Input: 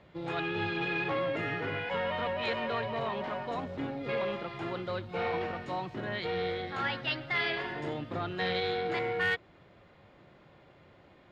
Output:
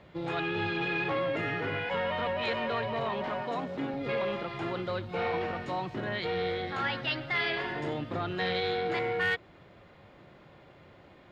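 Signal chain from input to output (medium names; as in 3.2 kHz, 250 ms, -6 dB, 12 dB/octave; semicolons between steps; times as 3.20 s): 3.42–3.94 s: high-pass 130 Hz 24 dB/octave; in parallel at -2.5 dB: peak limiter -30.5 dBFS, peak gain reduction 10 dB; on the sum: trim -1.5 dB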